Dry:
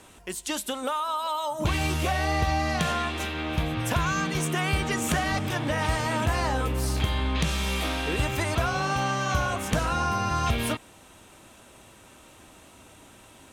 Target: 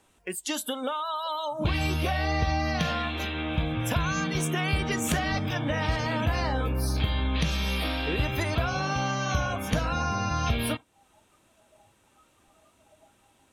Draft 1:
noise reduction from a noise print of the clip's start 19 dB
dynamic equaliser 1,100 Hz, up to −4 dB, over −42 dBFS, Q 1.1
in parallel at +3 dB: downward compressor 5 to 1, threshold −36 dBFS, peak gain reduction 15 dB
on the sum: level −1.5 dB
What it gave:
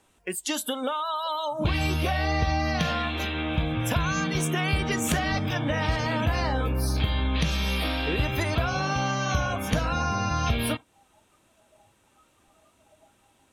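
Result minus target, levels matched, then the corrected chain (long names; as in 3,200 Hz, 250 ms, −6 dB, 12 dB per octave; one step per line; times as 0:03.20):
downward compressor: peak gain reduction −6.5 dB
noise reduction from a noise print of the clip's start 19 dB
dynamic equaliser 1,100 Hz, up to −4 dB, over −42 dBFS, Q 1.1
in parallel at +3 dB: downward compressor 5 to 1, threshold −44 dBFS, peak gain reduction 21 dB
on the sum: level −1.5 dB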